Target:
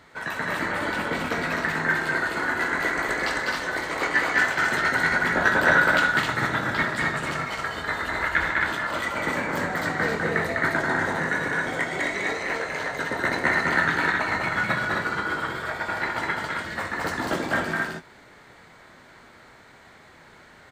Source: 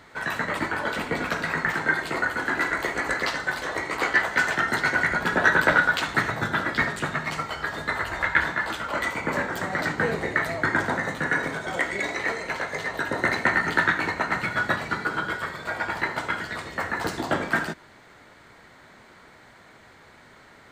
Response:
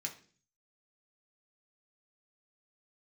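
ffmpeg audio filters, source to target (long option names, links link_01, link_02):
-filter_complex "[0:a]asplit=2[link_01][link_02];[link_02]adelay=24,volume=-11dB[link_03];[link_01][link_03]amix=inputs=2:normalize=0,asplit=2[link_04][link_05];[link_05]aecho=0:1:201.2|262.4:0.708|0.708[link_06];[link_04][link_06]amix=inputs=2:normalize=0,volume=-2.5dB"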